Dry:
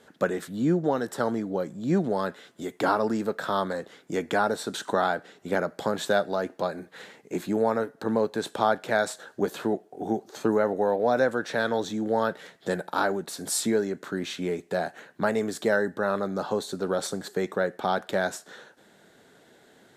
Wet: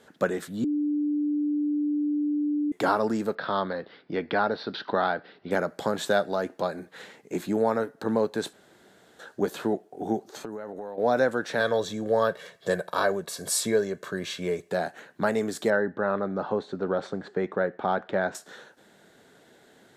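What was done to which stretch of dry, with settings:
0.64–2.72 s: bleep 295 Hz -23 dBFS
3.35–5.51 s: elliptic low-pass 4.8 kHz
8.53–9.19 s: room tone
10.25–10.98 s: compression 16:1, threshold -32 dBFS
11.60–14.71 s: comb 1.8 ms, depth 59%
15.70–18.35 s: low-pass 2.3 kHz

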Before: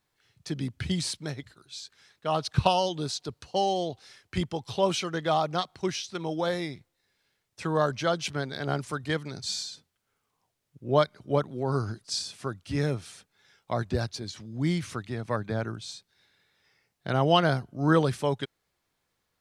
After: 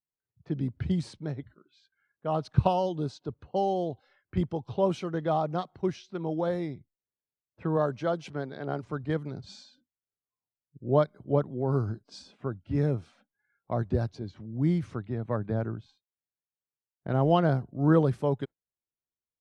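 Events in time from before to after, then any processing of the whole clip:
7.76–8.82 s: high-pass 150 Hz -> 310 Hz 6 dB/octave
15.81–17.32 s: companding laws mixed up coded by A
whole clip: level-controlled noise filter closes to 1.8 kHz, open at -24 dBFS; spectral noise reduction 24 dB; tilt shelf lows +9.5 dB, about 1.5 kHz; trim -7.5 dB

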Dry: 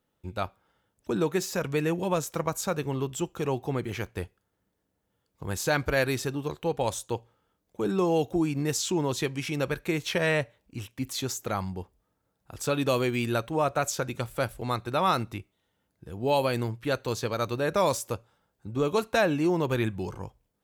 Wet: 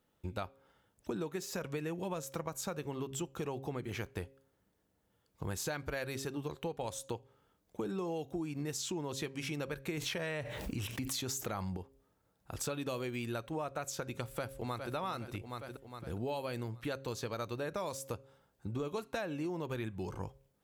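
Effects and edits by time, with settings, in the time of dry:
9.97–11.77 s: level flattener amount 70%
14.23–14.94 s: echo throw 410 ms, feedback 50%, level -8 dB
whole clip: de-hum 135.2 Hz, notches 4; compression 6:1, threshold -37 dBFS; trim +1 dB

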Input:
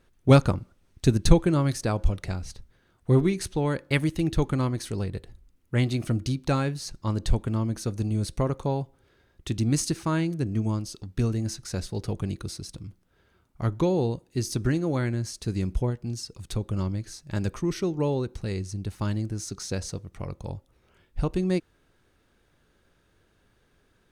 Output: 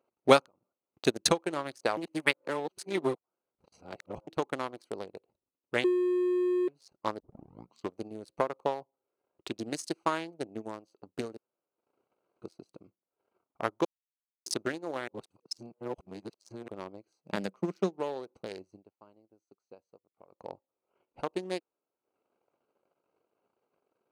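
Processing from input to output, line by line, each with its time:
0.40–1.05 s: compression 12:1, threshold -36 dBFS
1.97–4.27 s: reverse
5.84–6.68 s: bleep 360 Hz -13.5 dBFS
7.20 s: tape start 0.80 s
11.37–12.42 s: room tone
13.85–14.46 s: mute
15.08–16.68 s: reverse
17.23–18.01 s: peaking EQ 190 Hz +13.5 dB 0.37 oct
18.68–20.55 s: dip -18 dB, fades 0.25 s
whole clip: local Wiener filter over 25 samples; transient shaper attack +10 dB, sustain -11 dB; high-pass 550 Hz 12 dB/octave; trim -2.5 dB

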